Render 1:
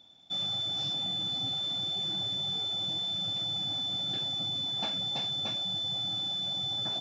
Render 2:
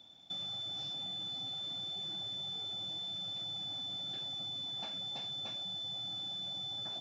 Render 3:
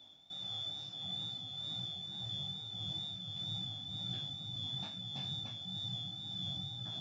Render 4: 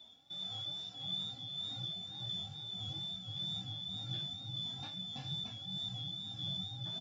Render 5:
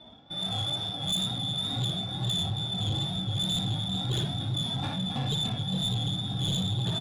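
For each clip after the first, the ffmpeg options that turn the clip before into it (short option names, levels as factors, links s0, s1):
-filter_complex "[0:a]acrossover=split=400|4800[s0][s1][s2];[s0]acompressor=threshold=0.00158:ratio=4[s3];[s1]acompressor=threshold=0.00708:ratio=4[s4];[s2]acompressor=threshold=0.00178:ratio=4[s5];[s3][s4][s5]amix=inputs=3:normalize=0"
-af "asubboost=boost=8:cutoff=160,flanger=delay=16:depth=6.5:speed=2.2,tremolo=f=1.7:d=0.44,volume=1.41"
-filter_complex "[0:a]asplit=2[s0][s1];[s1]adelay=2.8,afreqshift=2.6[s2];[s0][s2]amix=inputs=2:normalize=1,volume=1.41"
-filter_complex "[0:a]adynamicsmooth=sensitivity=6.5:basefreq=1600,asplit=2[s0][s1];[s1]aecho=0:1:58.31|271.1:0.708|0.355[s2];[s0][s2]amix=inputs=2:normalize=0,aeval=exprs='0.0335*sin(PI/2*2.51*val(0)/0.0335)':c=same,volume=1.78"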